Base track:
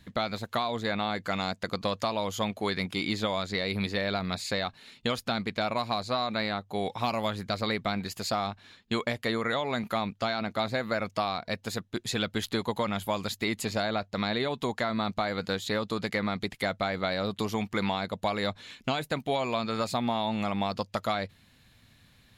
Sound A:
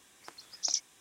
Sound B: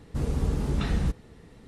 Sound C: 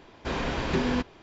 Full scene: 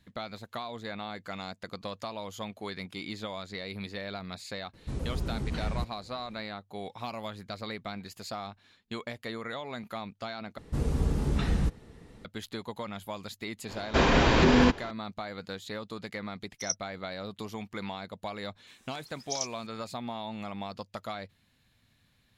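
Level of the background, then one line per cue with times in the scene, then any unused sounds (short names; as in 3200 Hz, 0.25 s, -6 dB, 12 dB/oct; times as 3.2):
base track -8.5 dB
4.73 add B -6.5 dB + shaped vibrato saw down 3.8 Hz, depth 250 cents
10.58 replace with B -1 dB
13.69 add C -10.5 dB + maximiser +18.5 dB
15.96 add A -1 dB + spectral expander 4:1
18.67 add A -3.5 dB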